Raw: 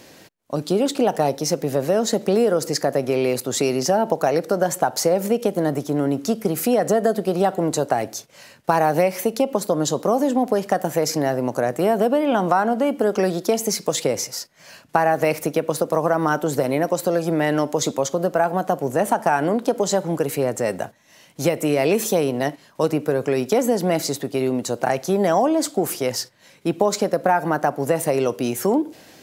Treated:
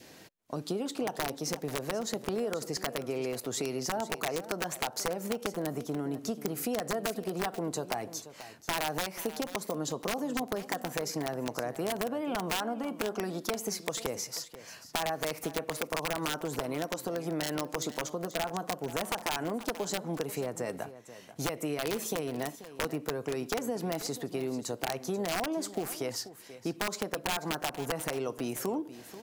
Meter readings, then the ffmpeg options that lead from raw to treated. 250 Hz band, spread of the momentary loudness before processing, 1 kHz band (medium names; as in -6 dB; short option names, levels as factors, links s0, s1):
-13.0 dB, 5 LU, -14.0 dB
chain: -filter_complex "[0:a]adynamicequalizer=threshold=0.0178:dfrequency=1100:dqfactor=3:tfrequency=1100:tqfactor=3:attack=5:release=100:ratio=0.375:range=2:mode=boostabove:tftype=bell,aeval=exprs='(mod(2.82*val(0)+1,2)-1)/2.82':c=same,acompressor=threshold=0.0447:ratio=2.5,bandreject=f=560:w=12,asplit=2[s0][s1];[s1]aecho=0:1:486:0.188[s2];[s0][s2]amix=inputs=2:normalize=0,volume=0.501"